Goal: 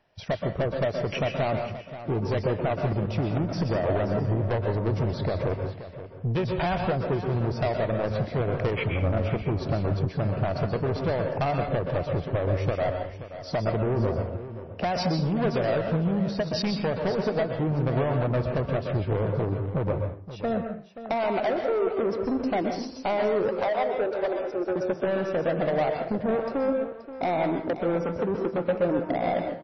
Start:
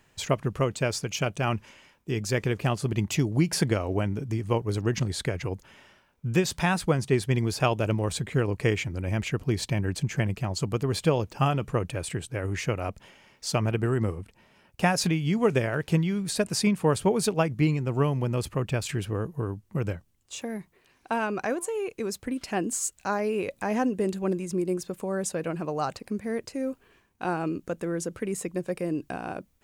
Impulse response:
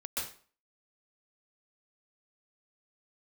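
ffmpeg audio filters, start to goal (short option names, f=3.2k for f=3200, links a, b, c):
-filter_complex "[0:a]asettb=1/sr,asplit=3[a][b][c];[a]atrim=end=23.524[d];[b]atrim=start=23.52:end=24.76,asetpts=PTS-STARTPTS,afade=t=in:d=0.004:c=qsin,afade=t=out:st=1.236:d=0.004:c=qsin,highpass=f=440:w=0.5412,highpass=f=440:w=1.3066[e];[c]atrim=start=24.756[f];[d][e]acrossfade=d=0.004:c1=hsin:c2=qsin[g];[g][f]acrossfade=d=0.004:c1=qsin:c2=hsin,afwtdn=0.0251,equalizer=f=650:w=2.3:g=14,acompressor=threshold=-25dB:ratio=10,asettb=1/sr,asplit=3[h][i][j];[h]atrim=end=2.884[k];[i]atrim=start=2.88:end=3.72,asetpts=PTS-STARTPTS,afade=t=in:d=0.004:c=qsin,afade=t=out:st=0.836:d=0.004:c=qsin,aeval=exprs='0.106*(cos(1*acos(clip(val(0)/0.106,-1,1)))-cos(1*PI/2))+0.00841*(cos(6*acos(clip(val(0)/0.106,-1,1)))-cos(6*PI/2))':c=same[l];[j]atrim=start=3.716[m];[k][l]acrossfade=d=0.004:c1=hsin:c2=qsin[n];[n][m]acrossfade=d=0.004:c1=qsin:c2=hsin,asoftclip=type=tanh:threshold=-30dB,aecho=1:1:528:0.224,asplit=2[o][p];[1:a]atrim=start_sample=2205[q];[p][q]afir=irnorm=-1:irlink=0,volume=-3.5dB[r];[o][r]amix=inputs=2:normalize=0,volume=5.5dB" -ar 22050 -c:a libmp3lame -b:a 24k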